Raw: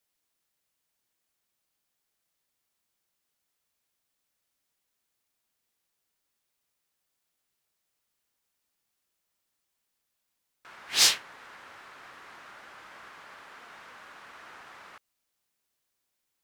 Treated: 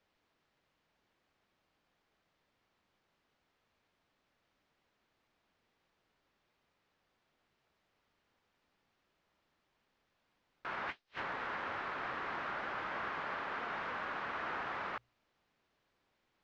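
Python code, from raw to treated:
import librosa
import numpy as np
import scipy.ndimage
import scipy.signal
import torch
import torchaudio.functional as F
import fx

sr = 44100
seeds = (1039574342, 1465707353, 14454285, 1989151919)

y = np.minimum(x, 2.0 * 10.0 ** (-17.5 / 20.0) - x)
y = fx.high_shelf(y, sr, hz=2200.0, db=-6.0)
y = fx.hum_notches(y, sr, base_hz=60, count=2)
y = fx.over_compress(y, sr, threshold_db=-47.0, ratio=-0.5)
y = fx.air_absorb(y, sr, metres=210.0)
y = y * 10.0 ** (6.5 / 20.0)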